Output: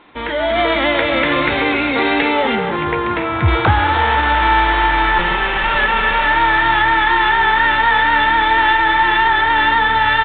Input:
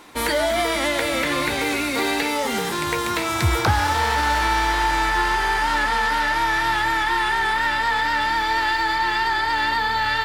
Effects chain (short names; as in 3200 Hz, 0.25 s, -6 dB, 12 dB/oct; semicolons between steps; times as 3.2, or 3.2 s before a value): 5.18–6.26 minimum comb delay 5.2 ms; AGC; 2.55–3.48 air absorption 390 m; speakerphone echo 0.29 s, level -9 dB; downsampling 8000 Hz; gain -1 dB